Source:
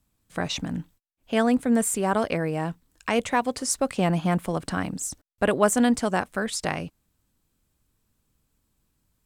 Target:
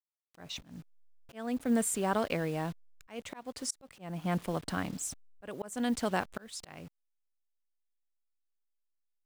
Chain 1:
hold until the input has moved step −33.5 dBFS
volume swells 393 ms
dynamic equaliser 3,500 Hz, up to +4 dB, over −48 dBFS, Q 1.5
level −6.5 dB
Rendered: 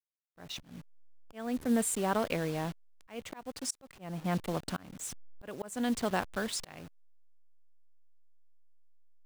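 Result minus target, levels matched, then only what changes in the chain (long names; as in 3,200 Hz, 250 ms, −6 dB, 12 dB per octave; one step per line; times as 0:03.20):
hold until the input has moved: distortion +8 dB
change: hold until the input has moved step −40.5 dBFS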